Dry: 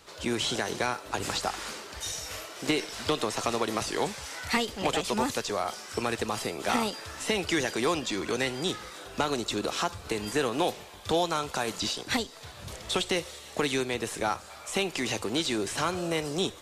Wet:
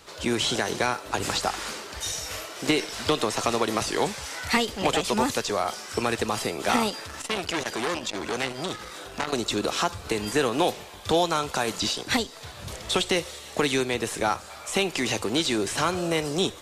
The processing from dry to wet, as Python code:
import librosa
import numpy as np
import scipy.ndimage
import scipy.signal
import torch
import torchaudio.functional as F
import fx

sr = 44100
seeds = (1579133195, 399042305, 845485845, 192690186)

y = fx.transformer_sat(x, sr, knee_hz=1800.0, at=(6.9, 9.33))
y = F.gain(torch.from_numpy(y), 4.0).numpy()